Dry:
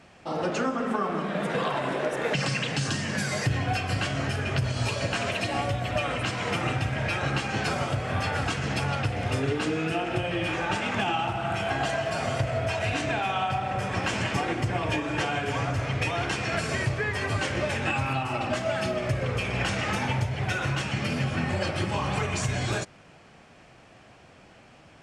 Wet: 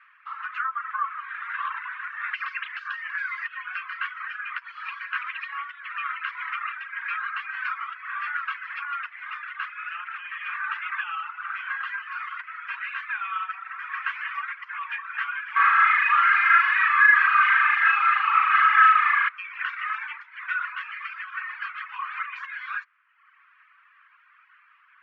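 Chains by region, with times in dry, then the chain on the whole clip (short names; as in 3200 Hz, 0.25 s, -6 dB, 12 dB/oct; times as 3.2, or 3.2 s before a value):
15.56–19.29 comb 2.4 ms, depth 94% + overdrive pedal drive 29 dB, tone 1300 Hz, clips at -11.5 dBFS + flutter echo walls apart 6.5 m, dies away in 1 s
whole clip: steep high-pass 1100 Hz 72 dB/oct; reverb removal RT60 0.99 s; LPF 2000 Hz 24 dB/oct; gain +6.5 dB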